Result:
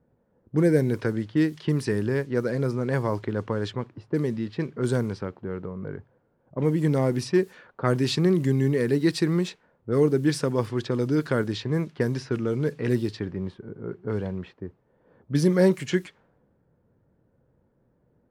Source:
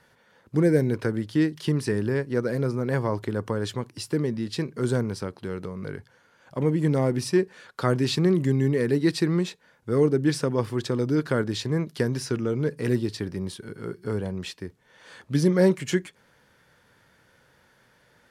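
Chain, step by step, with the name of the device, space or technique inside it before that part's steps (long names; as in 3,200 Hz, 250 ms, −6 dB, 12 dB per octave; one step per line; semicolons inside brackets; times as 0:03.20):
cassette deck with a dynamic noise filter (white noise bed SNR 33 dB; low-pass that shuts in the quiet parts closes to 380 Hz, open at −20 dBFS)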